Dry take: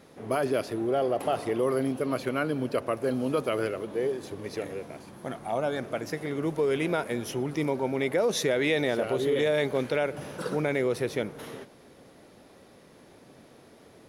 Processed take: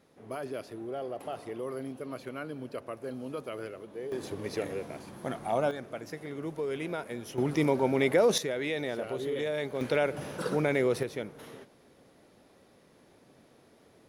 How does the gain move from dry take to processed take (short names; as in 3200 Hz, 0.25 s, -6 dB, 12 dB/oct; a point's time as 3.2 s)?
-10.5 dB
from 4.12 s +0.5 dB
from 5.71 s -7.5 dB
from 7.38 s +2 dB
from 8.38 s -7 dB
from 9.81 s 0 dB
from 11.03 s -6.5 dB